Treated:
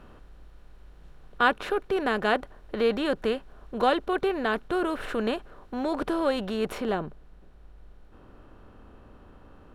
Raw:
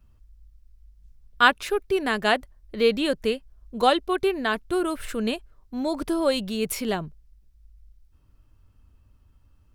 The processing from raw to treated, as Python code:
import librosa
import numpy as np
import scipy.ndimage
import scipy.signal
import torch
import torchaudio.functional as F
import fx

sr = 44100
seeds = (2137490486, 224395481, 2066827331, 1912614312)

y = fx.bin_compress(x, sr, power=0.6)
y = fx.lowpass(y, sr, hz=fx.steps((0.0, 1900.0), (6.78, 1000.0)), slope=6)
y = y * librosa.db_to_amplitude(-4.5)